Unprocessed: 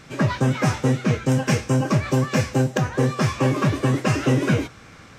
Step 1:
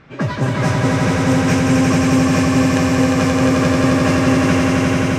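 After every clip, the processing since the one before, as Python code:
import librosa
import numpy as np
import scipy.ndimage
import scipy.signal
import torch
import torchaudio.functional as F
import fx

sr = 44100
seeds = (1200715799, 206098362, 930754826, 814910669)

y = fx.env_lowpass(x, sr, base_hz=2400.0, full_db=-16.5)
y = fx.echo_swell(y, sr, ms=88, loudest=5, wet_db=-3)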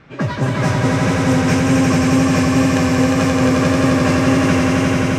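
y = fx.wow_flutter(x, sr, seeds[0], rate_hz=2.1, depth_cents=23.0)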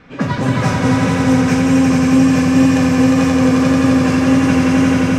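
y = fx.rider(x, sr, range_db=3, speed_s=0.5)
y = fx.room_shoebox(y, sr, seeds[1], volume_m3=2900.0, walls='furnished', distance_m=1.9)
y = y * 10.0 ** (-2.0 / 20.0)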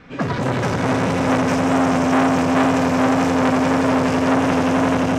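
y = fx.transformer_sat(x, sr, knee_hz=1300.0)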